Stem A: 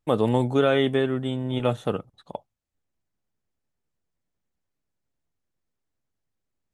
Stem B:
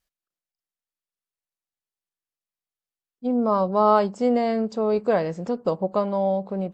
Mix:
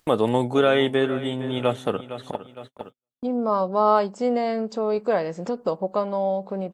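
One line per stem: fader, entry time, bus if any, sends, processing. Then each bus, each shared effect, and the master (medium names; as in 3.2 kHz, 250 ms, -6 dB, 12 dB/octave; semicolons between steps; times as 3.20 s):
+3.0 dB, 0.00 s, no send, echo send -15 dB, none
0.0 dB, 0.00 s, no send, no echo send, none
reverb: none
echo: feedback delay 459 ms, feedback 27%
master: gate -47 dBFS, range -53 dB; bass shelf 160 Hz -11 dB; upward compressor, threshold -23 dBFS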